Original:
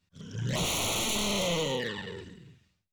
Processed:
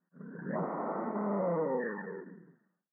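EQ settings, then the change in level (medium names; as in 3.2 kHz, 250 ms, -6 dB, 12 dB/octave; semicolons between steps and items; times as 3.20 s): brick-wall FIR high-pass 160 Hz; steep low-pass 1.8 kHz 96 dB/octave; 0.0 dB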